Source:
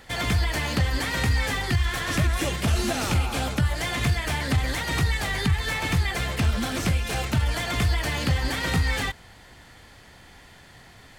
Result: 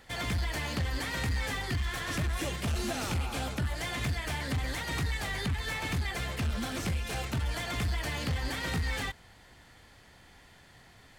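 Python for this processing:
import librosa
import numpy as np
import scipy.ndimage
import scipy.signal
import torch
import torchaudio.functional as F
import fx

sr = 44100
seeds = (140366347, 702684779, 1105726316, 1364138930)

y = np.clip(10.0 ** (19.5 / 20.0) * x, -1.0, 1.0) / 10.0 ** (19.5 / 20.0)
y = y * 10.0 ** (-7.0 / 20.0)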